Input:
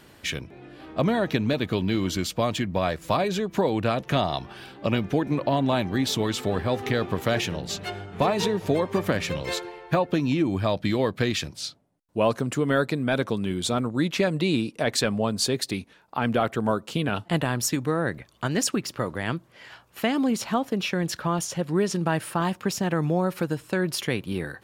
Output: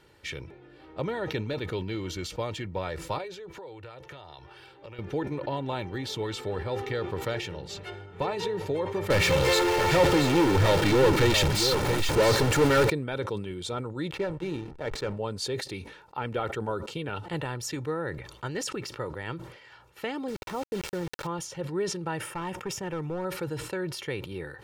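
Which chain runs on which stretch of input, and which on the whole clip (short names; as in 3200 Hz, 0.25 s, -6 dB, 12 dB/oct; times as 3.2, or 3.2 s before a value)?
3.18–4.99 HPF 53 Hz + bell 210 Hz -10.5 dB 0.86 oct + compressor 10:1, threshold -33 dBFS
9.1–12.9 zero-crossing step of -26 dBFS + sample leveller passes 3 + echo 0.68 s -7.5 dB
14.11–15.17 high shelf 3400 Hz -8 dB + de-hum 74.63 Hz, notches 8 + backlash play -27.5 dBFS
20.28–21.27 LPF 1200 Hz + requantised 6-bit, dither none + fast leveller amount 50%
22.2–23.25 bell 4200 Hz -13.5 dB 0.25 oct + overloaded stage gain 19 dB
whole clip: high shelf 8600 Hz -9.5 dB; comb 2.2 ms, depth 59%; sustainer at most 70 dB/s; gain -8 dB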